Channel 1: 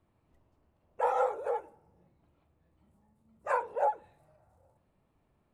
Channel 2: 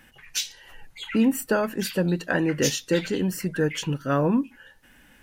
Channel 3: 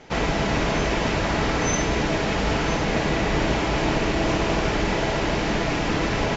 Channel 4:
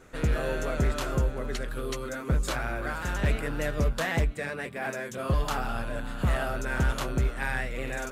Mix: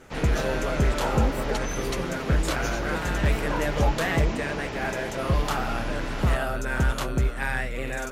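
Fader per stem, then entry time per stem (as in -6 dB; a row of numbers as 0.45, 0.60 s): -2.5, -13.0, -10.5, +2.5 dB; 0.00, 0.00, 0.00, 0.00 s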